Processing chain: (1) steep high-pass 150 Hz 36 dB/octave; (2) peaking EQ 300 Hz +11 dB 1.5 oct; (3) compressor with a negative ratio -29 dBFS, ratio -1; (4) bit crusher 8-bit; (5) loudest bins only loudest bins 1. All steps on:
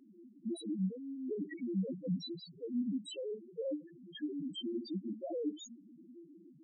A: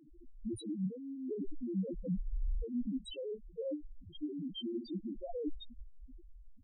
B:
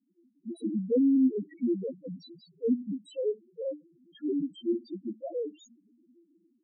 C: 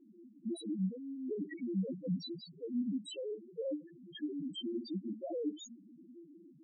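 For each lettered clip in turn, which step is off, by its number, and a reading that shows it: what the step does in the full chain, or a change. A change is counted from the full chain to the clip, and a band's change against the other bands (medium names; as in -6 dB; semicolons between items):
1, momentary loudness spread change -2 LU; 3, crest factor change +2.0 dB; 4, distortion -22 dB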